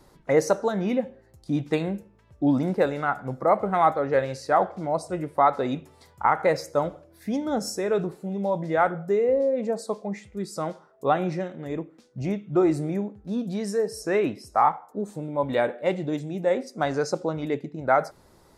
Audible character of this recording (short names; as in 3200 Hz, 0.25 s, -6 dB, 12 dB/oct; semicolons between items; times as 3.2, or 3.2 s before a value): noise floor -57 dBFS; spectral tilt -3.5 dB/oct